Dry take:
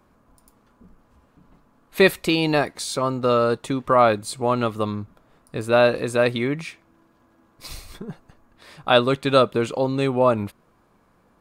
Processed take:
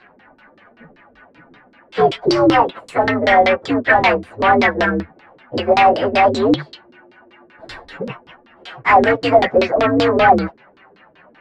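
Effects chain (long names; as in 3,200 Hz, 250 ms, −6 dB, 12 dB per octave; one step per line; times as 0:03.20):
partials spread apart or drawn together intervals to 128%
mid-hump overdrive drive 27 dB, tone 3,300 Hz, clips at −4.5 dBFS
auto-filter low-pass saw down 5.2 Hz 290–4,500 Hz
level −2 dB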